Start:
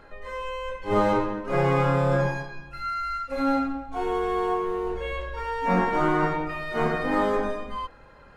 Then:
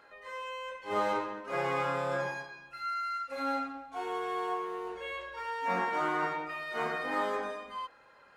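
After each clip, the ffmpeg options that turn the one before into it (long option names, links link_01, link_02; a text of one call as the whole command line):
ffmpeg -i in.wav -af "highpass=frequency=870:poles=1,volume=-3.5dB" out.wav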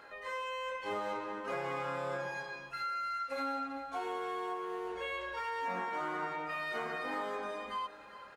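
ffmpeg -i in.wav -af "acompressor=threshold=-40dB:ratio=5,aecho=1:1:402|804|1206:0.178|0.064|0.023,volume=4.5dB" out.wav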